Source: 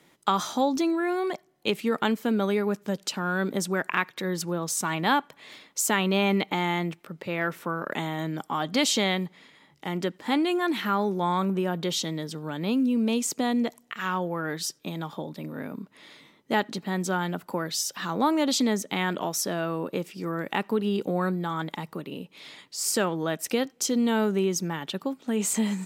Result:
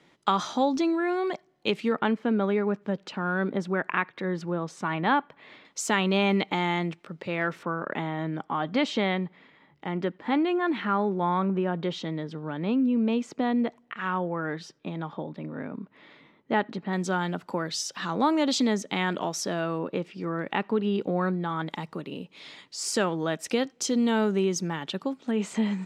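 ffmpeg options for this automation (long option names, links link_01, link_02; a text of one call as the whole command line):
ffmpeg -i in.wav -af "asetnsamples=nb_out_samples=441:pad=0,asendcmd='1.92 lowpass f 2400;5.65 lowpass f 5900;7.63 lowpass f 2400;16.93 lowpass f 6200;19.78 lowpass f 3500;21.67 lowpass f 6900;25.31 lowpass f 3300',lowpass=5200" out.wav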